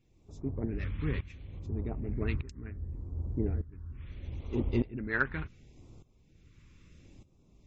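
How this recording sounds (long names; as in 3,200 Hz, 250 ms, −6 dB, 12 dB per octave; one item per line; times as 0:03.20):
phaser sweep stages 2, 0.71 Hz, lowest notch 650–1,700 Hz
tremolo saw up 0.83 Hz, depth 85%
MP3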